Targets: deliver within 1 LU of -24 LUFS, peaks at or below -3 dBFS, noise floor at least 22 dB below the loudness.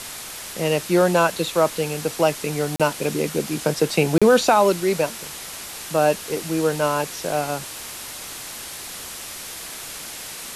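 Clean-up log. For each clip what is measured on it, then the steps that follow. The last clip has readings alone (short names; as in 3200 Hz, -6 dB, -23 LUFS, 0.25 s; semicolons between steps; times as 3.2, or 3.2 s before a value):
dropouts 2; longest dropout 36 ms; noise floor -35 dBFS; noise floor target -45 dBFS; loudness -22.5 LUFS; peak -4.0 dBFS; loudness target -24.0 LUFS
-> interpolate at 2.76/4.18, 36 ms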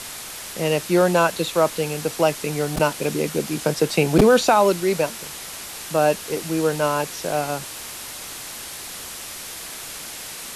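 dropouts 0; noise floor -35 dBFS; noise floor target -45 dBFS
-> denoiser 10 dB, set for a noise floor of -35 dBFS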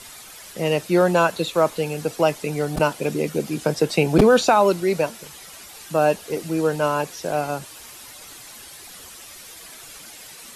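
noise floor -42 dBFS; noise floor target -43 dBFS
-> denoiser 6 dB, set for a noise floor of -42 dBFS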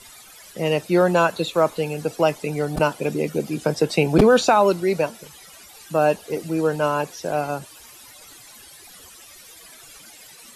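noise floor -46 dBFS; loudness -21.0 LUFS; peak -2.5 dBFS; loudness target -24.0 LUFS
-> gain -3 dB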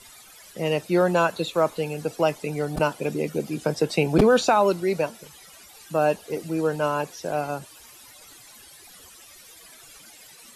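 loudness -24.0 LUFS; peak -5.5 dBFS; noise floor -49 dBFS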